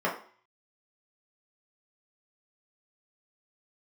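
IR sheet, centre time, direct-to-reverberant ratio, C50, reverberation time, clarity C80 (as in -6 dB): 25 ms, -5.5 dB, 8.5 dB, 0.45 s, 13.0 dB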